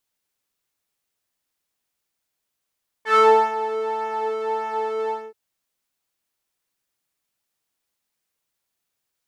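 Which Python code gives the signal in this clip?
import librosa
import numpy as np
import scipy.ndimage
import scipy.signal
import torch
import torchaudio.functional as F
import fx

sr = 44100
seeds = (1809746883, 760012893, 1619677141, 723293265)

y = fx.sub_patch_pwm(sr, seeds[0], note=69, wave2='saw', interval_st=0, detune_cents=16, level2_db=-9.0, sub_db=-15.0, noise_db=-30.0, kind='bandpass', cutoff_hz=420.0, q=2.3, env_oct=2.0, env_decay_s=0.27, env_sustain_pct=40, attack_ms=131.0, decay_s=0.36, sustain_db=-14.0, release_s=0.23, note_s=2.05, lfo_hz=1.7, width_pct=30, width_swing_pct=20)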